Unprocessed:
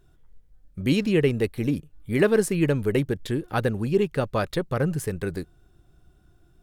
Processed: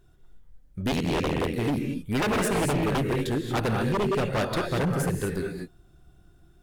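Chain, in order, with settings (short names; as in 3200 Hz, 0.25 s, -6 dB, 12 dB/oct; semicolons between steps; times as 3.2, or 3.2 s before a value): non-linear reverb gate 0.26 s rising, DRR 2.5 dB; 0.91–1.56 ring modulator 41 Hz; wavefolder -19.5 dBFS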